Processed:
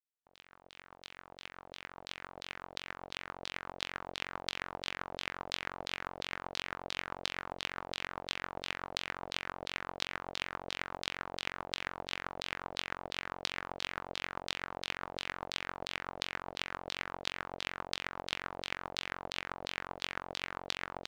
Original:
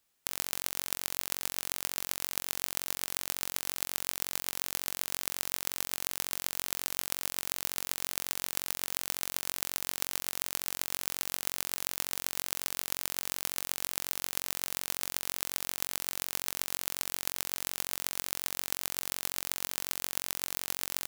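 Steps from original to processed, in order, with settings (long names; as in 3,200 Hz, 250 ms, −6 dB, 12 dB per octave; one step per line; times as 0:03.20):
fade in at the beginning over 4.53 s
auto-filter low-pass saw down 2.9 Hz 550–4,300 Hz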